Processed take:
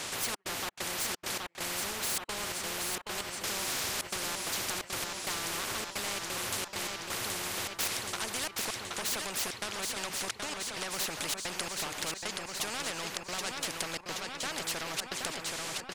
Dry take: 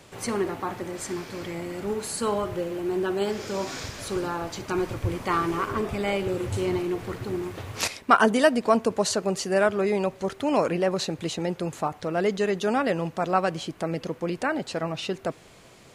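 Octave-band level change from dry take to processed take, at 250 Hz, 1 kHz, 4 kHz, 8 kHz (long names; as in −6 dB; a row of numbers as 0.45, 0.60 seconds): −17.0, −11.0, +2.0, +4.0 decibels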